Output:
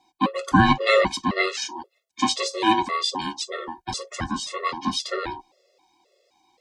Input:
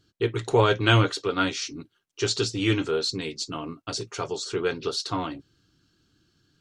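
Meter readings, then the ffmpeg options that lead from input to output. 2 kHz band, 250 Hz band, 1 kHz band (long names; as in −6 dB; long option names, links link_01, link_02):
+3.5 dB, +3.5 dB, +7.5 dB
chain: -af "aeval=exprs='val(0)*sin(2*PI*640*n/s)':channel_layout=same,afreqshift=20,afftfilt=real='re*gt(sin(2*PI*1.9*pts/sr)*(1-2*mod(floor(b*sr/1024/360),2)),0)':imag='im*gt(sin(2*PI*1.9*pts/sr)*(1-2*mod(floor(b*sr/1024/360),2)),0)':win_size=1024:overlap=0.75,volume=8dB"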